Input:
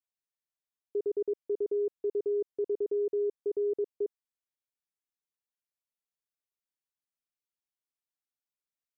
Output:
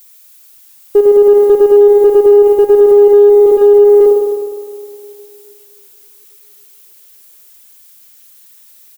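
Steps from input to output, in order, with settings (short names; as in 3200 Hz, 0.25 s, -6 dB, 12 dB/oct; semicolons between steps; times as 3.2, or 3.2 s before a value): reverse delay 0.258 s, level -12.5 dB; added noise violet -61 dBFS; in parallel at -8 dB: one-sided clip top -37 dBFS, bottom -26.5 dBFS; on the sum: crackle 200/s -62 dBFS; comb 4.9 ms, depth 34%; on a send: narrowing echo 0.279 s, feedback 68%, band-pass 330 Hz, level -24 dB; on the sum: spring tank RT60 2.4 s, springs 51 ms, chirp 25 ms, DRR 0 dB; maximiser +21 dB; upward expander 1.5:1, over -16 dBFS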